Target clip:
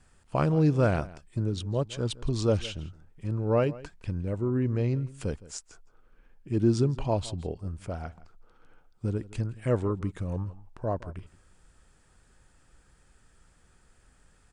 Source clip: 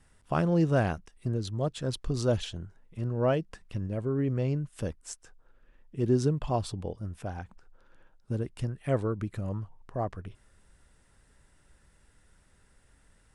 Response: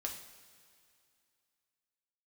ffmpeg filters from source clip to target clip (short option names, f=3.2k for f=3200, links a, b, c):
-filter_complex "[0:a]asplit=2[a][b];[b]adelay=151.6,volume=-19dB,highshelf=f=4k:g=-3.41[c];[a][c]amix=inputs=2:normalize=0,asetrate=40517,aresample=44100,volume=1.5dB"